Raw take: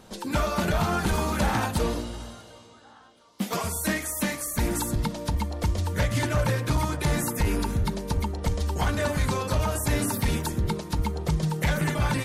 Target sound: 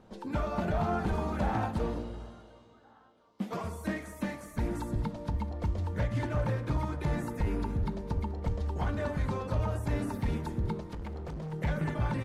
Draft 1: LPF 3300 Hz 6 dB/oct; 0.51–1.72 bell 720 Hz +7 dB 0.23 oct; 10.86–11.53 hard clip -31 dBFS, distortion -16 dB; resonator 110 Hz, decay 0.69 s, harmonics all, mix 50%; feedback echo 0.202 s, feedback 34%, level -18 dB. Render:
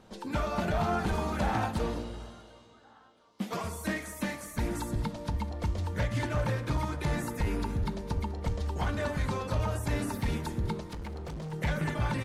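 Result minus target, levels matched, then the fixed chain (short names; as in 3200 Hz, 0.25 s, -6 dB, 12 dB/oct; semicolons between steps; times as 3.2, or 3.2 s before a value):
4000 Hz band +6.5 dB
LPF 1100 Hz 6 dB/oct; 0.51–1.72 bell 720 Hz +7 dB 0.23 oct; 10.86–11.53 hard clip -31 dBFS, distortion -16 dB; resonator 110 Hz, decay 0.69 s, harmonics all, mix 50%; feedback echo 0.202 s, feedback 34%, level -18 dB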